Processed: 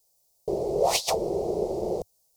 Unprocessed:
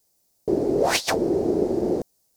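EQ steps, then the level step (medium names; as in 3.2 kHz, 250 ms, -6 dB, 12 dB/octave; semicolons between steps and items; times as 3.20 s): peaking EQ 100 Hz -9.5 dB 0.33 oct; static phaser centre 660 Hz, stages 4; 0.0 dB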